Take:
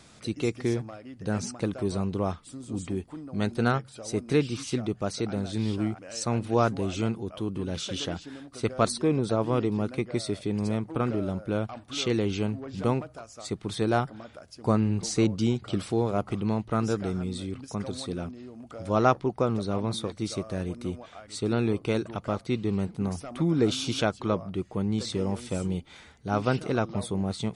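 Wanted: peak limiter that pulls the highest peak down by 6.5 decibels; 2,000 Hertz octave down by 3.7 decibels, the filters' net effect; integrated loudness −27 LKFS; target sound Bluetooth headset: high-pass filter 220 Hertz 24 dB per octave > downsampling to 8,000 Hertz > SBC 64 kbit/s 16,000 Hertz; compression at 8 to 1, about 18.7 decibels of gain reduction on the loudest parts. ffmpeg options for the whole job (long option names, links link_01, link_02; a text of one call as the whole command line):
ffmpeg -i in.wav -af "equalizer=frequency=2000:width_type=o:gain=-5.5,acompressor=threshold=-38dB:ratio=8,alimiter=level_in=8.5dB:limit=-24dB:level=0:latency=1,volume=-8.5dB,highpass=frequency=220:width=0.5412,highpass=frequency=220:width=1.3066,aresample=8000,aresample=44100,volume=19.5dB" -ar 16000 -c:a sbc -b:a 64k out.sbc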